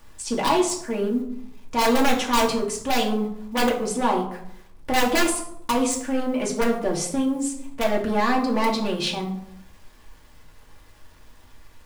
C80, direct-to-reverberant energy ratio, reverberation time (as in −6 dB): 12.0 dB, −2.0 dB, 0.75 s